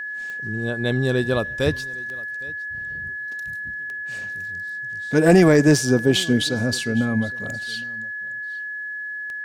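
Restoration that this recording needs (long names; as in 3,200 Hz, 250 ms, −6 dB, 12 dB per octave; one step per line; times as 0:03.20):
click removal
notch filter 1,700 Hz, Q 30
echo removal 812 ms −22.5 dB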